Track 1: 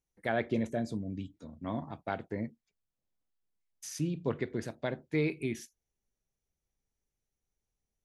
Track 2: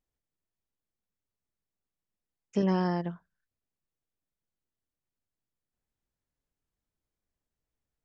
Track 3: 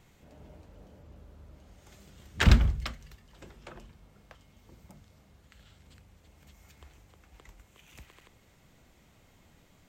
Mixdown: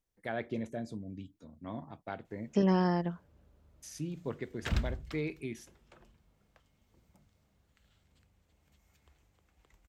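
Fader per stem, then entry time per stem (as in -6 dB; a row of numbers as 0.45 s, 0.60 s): -5.5 dB, 0.0 dB, -12.0 dB; 0.00 s, 0.00 s, 2.25 s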